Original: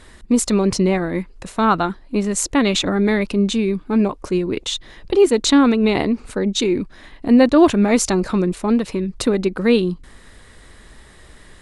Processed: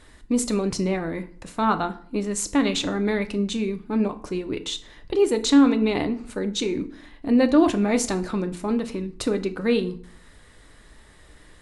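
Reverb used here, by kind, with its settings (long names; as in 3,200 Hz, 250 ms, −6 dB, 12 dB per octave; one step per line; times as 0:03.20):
feedback delay network reverb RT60 0.51 s, low-frequency decay 1.2×, high-frequency decay 0.75×, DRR 8 dB
level −6.5 dB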